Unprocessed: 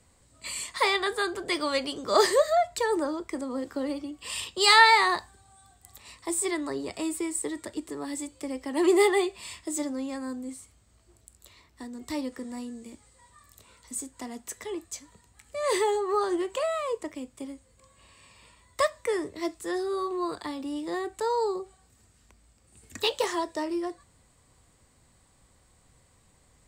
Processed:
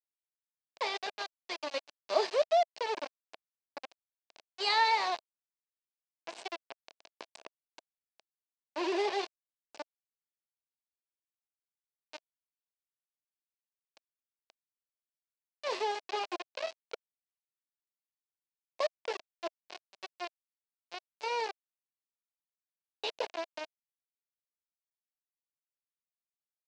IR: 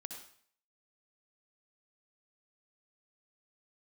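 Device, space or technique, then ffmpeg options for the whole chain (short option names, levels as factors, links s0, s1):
hand-held game console: -af "acrusher=bits=3:mix=0:aa=0.000001,highpass=470,equalizer=f=650:t=q:w=4:g=6,equalizer=f=1300:t=q:w=4:g=-9,equalizer=f=1900:t=q:w=4:g=-7,equalizer=f=3400:t=q:w=4:g=-5,lowpass=f=4700:w=0.5412,lowpass=f=4700:w=1.3066,volume=0.447"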